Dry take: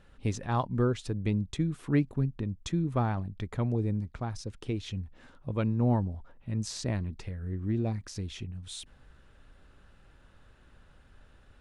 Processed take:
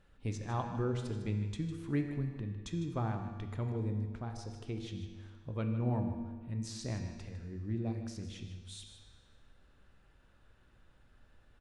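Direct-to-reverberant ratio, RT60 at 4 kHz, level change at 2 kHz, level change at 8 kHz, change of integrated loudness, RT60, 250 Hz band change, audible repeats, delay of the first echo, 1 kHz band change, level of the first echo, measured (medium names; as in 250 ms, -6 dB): 4.0 dB, 1.5 s, -6.5 dB, -7.0 dB, -6.0 dB, 1.6 s, -6.5 dB, 1, 154 ms, -6.5 dB, -12.0 dB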